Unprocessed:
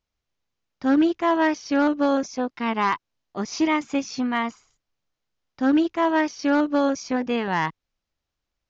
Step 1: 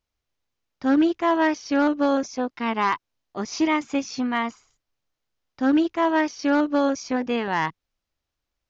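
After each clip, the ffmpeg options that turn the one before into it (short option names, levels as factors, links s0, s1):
-af "equalizer=f=180:t=o:w=0.3:g=-5"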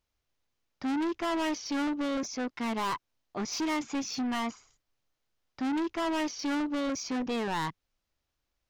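-af "asoftclip=type=tanh:threshold=0.0398"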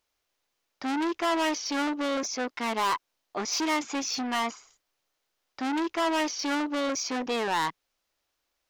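-af "bass=f=250:g=-14,treble=f=4000:g=1,volume=1.88"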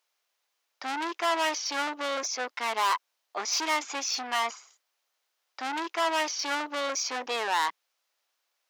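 -af "highpass=600,volume=1.19"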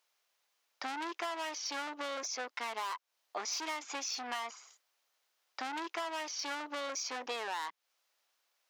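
-af "acompressor=threshold=0.0158:ratio=5"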